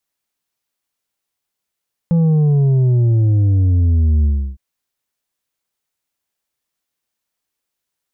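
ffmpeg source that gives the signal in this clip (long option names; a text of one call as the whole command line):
ffmpeg -f lavfi -i "aevalsrc='0.282*clip((2.46-t)/0.33,0,1)*tanh(1.88*sin(2*PI*170*2.46/log(65/170)*(exp(log(65/170)*t/2.46)-1)))/tanh(1.88)':duration=2.46:sample_rate=44100" out.wav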